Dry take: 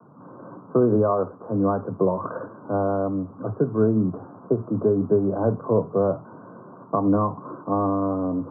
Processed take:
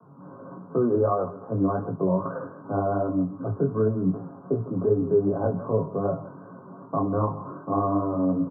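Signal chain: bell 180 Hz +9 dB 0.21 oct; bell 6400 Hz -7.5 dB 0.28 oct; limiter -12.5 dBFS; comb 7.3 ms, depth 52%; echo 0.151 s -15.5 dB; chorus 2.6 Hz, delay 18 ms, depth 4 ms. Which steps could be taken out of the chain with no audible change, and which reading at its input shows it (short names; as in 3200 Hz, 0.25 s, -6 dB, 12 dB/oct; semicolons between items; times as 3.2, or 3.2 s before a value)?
bell 6400 Hz: input band ends at 1200 Hz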